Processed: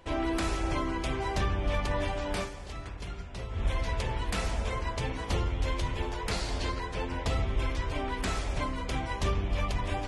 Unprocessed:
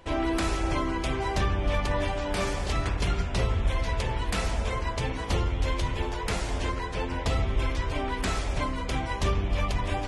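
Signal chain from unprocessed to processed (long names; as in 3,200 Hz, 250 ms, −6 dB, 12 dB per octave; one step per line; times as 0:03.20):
0:02.37–0:03.63: duck −9.5 dB, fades 0.12 s
0:06.31–0:06.80: parametric band 4,400 Hz +9.5 dB 0.44 octaves
level −3 dB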